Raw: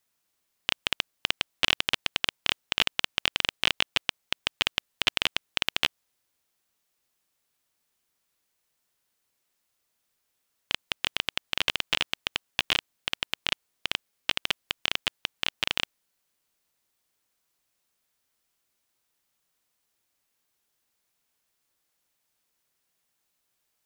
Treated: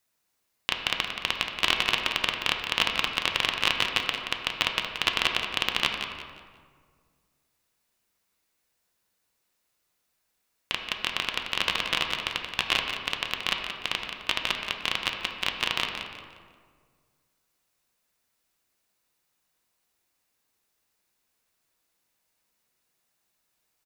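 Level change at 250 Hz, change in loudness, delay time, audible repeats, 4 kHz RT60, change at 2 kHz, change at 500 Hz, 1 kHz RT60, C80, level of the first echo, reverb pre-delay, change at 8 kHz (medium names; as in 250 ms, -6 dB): +2.5 dB, +1.0 dB, 177 ms, 3, 1.2 s, +2.0 dB, +3.0 dB, 1.7 s, 4.0 dB, -9.0 dB, 4 ms, +0.5 dB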